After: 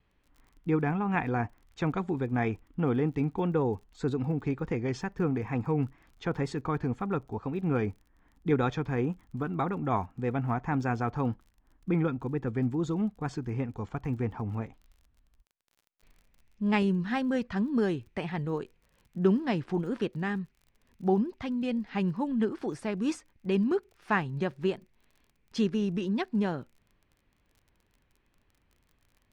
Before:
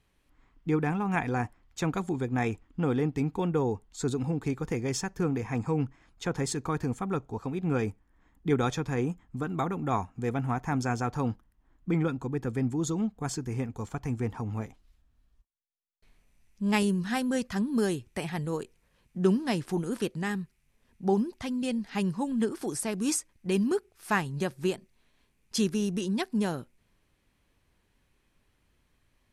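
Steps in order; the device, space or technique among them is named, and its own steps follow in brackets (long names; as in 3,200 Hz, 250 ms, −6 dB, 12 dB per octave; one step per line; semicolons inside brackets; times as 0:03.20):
lo-fi chain (low-pass filter 3,000 Hz 12 dB per octave; tape wow and flutter; surface crackle 36 per second −49 dBFS)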